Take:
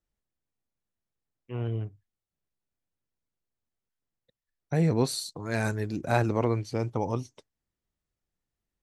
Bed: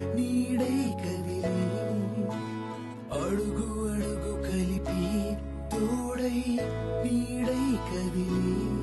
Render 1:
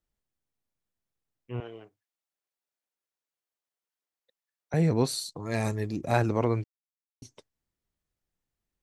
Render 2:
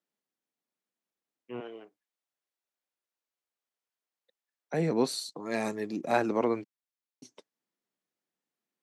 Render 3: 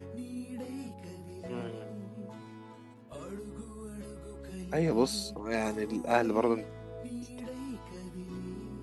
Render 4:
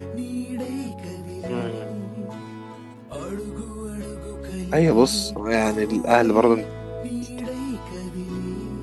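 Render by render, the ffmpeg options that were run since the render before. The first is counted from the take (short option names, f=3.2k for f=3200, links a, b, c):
-filter_complex "[0:a]asettb=1/sr,asplit=3[a][b][c];[a]atrim=end=1.604[d];[b]atrim=start=1.6:end=4.74,asetpts=PTS-STARTPTS,afade=t=in:d=0.004:c=qsin,afade=t=out:st=3.136:d=0.004:c=qsin,highpass=510[e];[c]atrim=start=4.736[f];[d][e]acrossfade=d=0.004:c1=hsin:c2=qsin[g];[g][f]acrossfade=d=0.004:c1=qsin:c2=hsin,asettb=1/sr,asplit=3[h][i][j];[h]atrim=end=5.444[k];[i]atrim=start=5.44:end=6.14,asetpts=PTS-STARTPTS,afade=t=in:d=0.004:c=qsin,afade=t=out:st=0.696:d=0.004:c=qsin,asuperstop=centerf=1500:order=4:qfactor=5.7[l];[j]atrim=start=6.136[m];[k][l]acrossfade=d=0.004:c1=hsin:c2=qsin[n];[n][m]acrossfade=d=0.004:c1=qsin:c2=hsin,asplit=3[o][p][q];[o]atrim=end=6.64,asetpts=PTS-STARTPTS,afade=t=out:st=6.636:d=0.004:c=hsin[r];[p]atrim=start=6.64:end=7.22,asetpts=PTS-STARTPTS,volume=0[s];[q]atrim=start=7.22,asetpts=PTS-STARTPTS,afade=t=in:d=0.004:c=hsin[t];[r][s][t]concat=n=3:v=0:a=1"
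-af "highpass=f=200:w=0.5412,highpass=f=200:w=1.3066,highshelf=f=7.1k:g=-6.5"
-filter_complex "[1:a]volume=-13dB[a];[0:a][a]amix=inputs=2:normalize=0"
-af "volume=11dB,alimiter=limit=-3dB:level=0:latency=1"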